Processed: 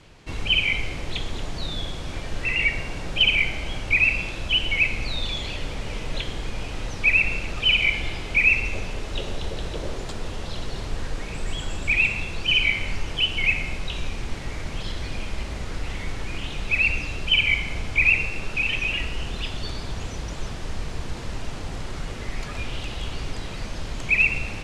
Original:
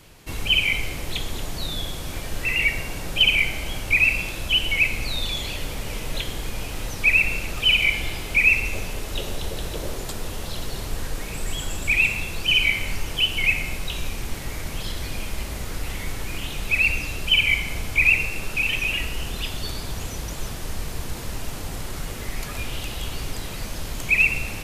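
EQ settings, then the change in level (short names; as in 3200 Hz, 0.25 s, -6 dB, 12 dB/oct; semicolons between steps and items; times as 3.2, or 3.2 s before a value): LPF 11000 Hz 12 dB/oct; air absorption 76 m; 0.0 dB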